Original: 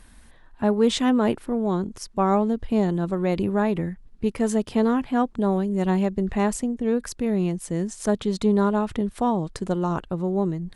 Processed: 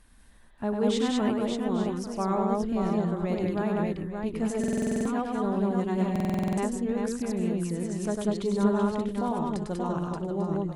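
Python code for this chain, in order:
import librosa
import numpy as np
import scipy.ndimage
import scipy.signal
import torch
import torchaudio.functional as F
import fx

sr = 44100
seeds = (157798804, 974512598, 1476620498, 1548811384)

y = fx.echo_multitap(x, sr, ms=(100, 192, 197, 579, 845, 885), db=(-4.5, -4.5, -6.0, -5.0, -14.5, -17.5))
y = fx.buffer_glitch(y, sr, at_s=(4.59, 6.11), block=2048, repeats=9)
y = y * 10.0 ** (-8.5 / 20.0)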